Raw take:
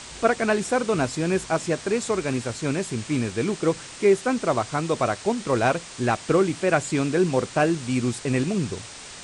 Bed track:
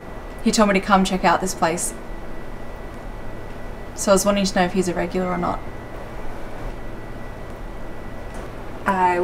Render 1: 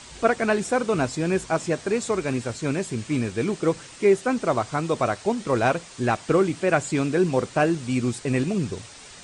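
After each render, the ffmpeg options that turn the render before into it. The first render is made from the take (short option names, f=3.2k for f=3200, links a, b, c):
-af "afftdn=nr=6:nf=-41"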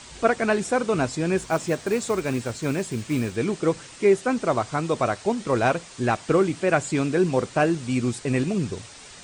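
-filter_complex "[0:a]asettb=1/sr,asplit=3[a][b][c];[a]atrim=end=1.384[d];[b]atrim=start=1.38:end=3.36,asetpts=PTS-STARTPTS,afade=t=in:d=0.004:c=qsin,afade=t=out:st=1.976:d=0.004:c=qsin,acrusher=bits=6:mode=log:mix=0:aa=0.000001[e];[c]atrim=start=3.356[f];[d][e]acrossfade=d=0.004:c1=hsin:c2=qsin[g];[g][f]acrossfade=d=0.004:c1=qsin:c2=hsin"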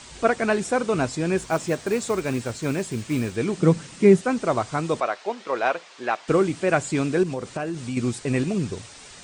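-filter_complex "[0:a]asettb=1/sr,asplit=3[a][b][c];[a]atrim=end=3.574[d];[b]atrim=start=3.57:end=4.21,asetpts=PTS-STARTPTS,afade=t=in:d=0.004:c=qsin,afade=t=out:st=0.636:d=0.004:c=qsin,equalizer=f=180:w=1.5:g=14[e];[c]atrim=start=4.206[f];[d][e]acrossfade=d=0.004:c1=hsin:c2=qsin[g];[g][f]acrossfade=d=0.004:c1=qsin:c2=hsin,asettb=1/sr,asplit=3[h][i][j];[h]atrim=end=5.004[k];[i]atrim=start=5:end=6.28,asetpts=PTS-STARTPTS,afade=t=in:d=0.004:c=qsin,afade=t=out:st=1.276:d=0.004:c=qsin,highpass=500,lowpass=4.3k[l];[j]atrim=start=6.276[m];[k][l]acrossfade=d=0.004:c1=hsin:c2=qsin[n];[n][m]acrossfade=d=0.004:c1=qsin:c2=hsin,asettb=1/sr,asplit=3[o][p][q];[o]atrim=end=7.234[r];[p]atrim=start=7.23:end=7.97,asetpts=PTS-STARTPTS,afade=t=in:d=0.004:c=qsin,afade=t=out:st=0.736:d=0.004:c=qsin,acompressor=threshold=-25dB:ratio=5:attack=3.2:release=140:knee=1:detection=peak[s];[q]atrim=start=7.966[t];[r][s]acrossfade=d=0.004:c1=hsin:c2=qsin[u];[u][t]acrossfade=d=0.004:c1=qsin:c2=hsin"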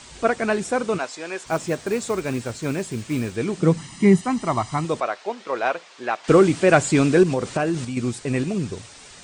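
-filter_complex "[0:a]asplit=3[a][b][c];[a]afade=t=out:st=0.97:d=0.02[d];[b]highpass=600,lowpass=7.6k,afade=t=in:st=0.97:d=0.02,afade=t=out:st=1.45:d=0.02[e];[c]afade=t=in:st=1.45:d=0.02[f];[d][e][f]amix=inputs=3:normalize=0,asettb=1/sr,asplit=3[g][h][i];[g]atrim=end=3.774[j];[h]atrim=start=3.77:end=4.85,asetpts=PTS-STARTPTS,afade=t=in:d=0.004:c=qsin,afade=t=out:st=1.076:d=0.004:c=qsin,aecho=1:1:1:0.69,atrim=end_sample=47628[k];[i]atrim=start=4.846[l];[j][k]acrossfade=d=0.004:c1=hsin:c2=qsin[m];[m][l]acrossfade=d=0.004:c1=qsin:c2=hsin,asettb=1/sr,asplit=3[n][o][p];[n]atrim=end=6.244[q];[o]atrim=start=6.24:end=7.85,asetpts=PTS-STARTPTS,afade=t=in:d=0.004:c=qsin,afade=t=out:st=1.606:d=0.004:c=qsin,acontrast=66[r];[p]atrim=start=7.846[s];[q][r]acrossfade=d=0.004:c1=hsin:c2=qsin[t];[t][s]acrossfade=d=0.004:c1=qsin:c2=hsin"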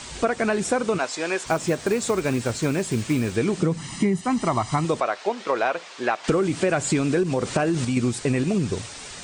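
-filter_complex "[0:a]asplit=2[a][b];[b]alimiter=limit=-13.5dB:level=0:latency=1:release=22,volume=0dB[c];[a][c]amix=inputs=2:normalize=0,acompressor=threshold=-18dB:ratio=10"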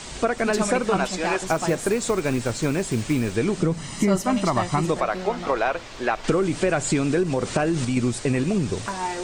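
-filter_complex "[1:a]volume=-10.5dB[a];[0:a][a]amix=inputs=2:normalize=0"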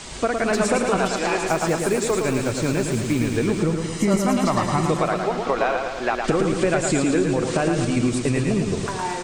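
-af "aecho=1:1:111|222|333|444|555|666|777|888:0.562|0.337|0.202|0.121|0.0729|0.0437|0.0262|0.0157"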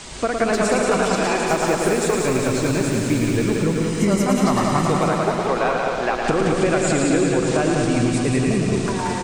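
-af "aecho=1:1:180|378|595.8|835.4|1099:0.631|0.398|0.251|0.158|0.1"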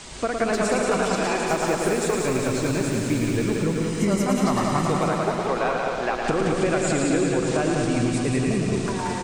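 -af "volume=-3.5dB"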